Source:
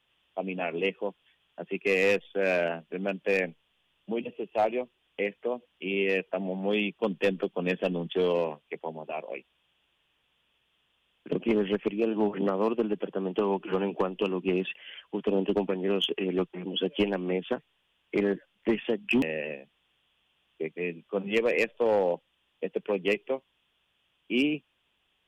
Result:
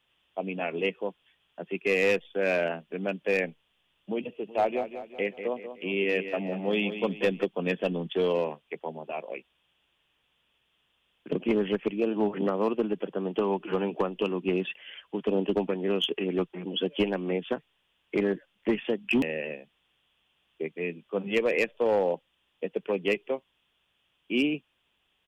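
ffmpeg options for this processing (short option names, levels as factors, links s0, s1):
-filter_complex "[0:a]asplit=3[s0][s1][s2];[s0]afade=t=out:st=4.47:d=0.02[s3];[s1]aecho=1:1:188|376|564|752|940:0.316|0.145|0.0669|0.0308|0.0142,afade=t=in:st=4.47:d=0.02,afade=t=out:st=7.44:d=0.02[s4];[s2]afade=t=in:st=7.44:d=0.02[s5];[s3][s4][s5]amix=inputs=3:normalize=0"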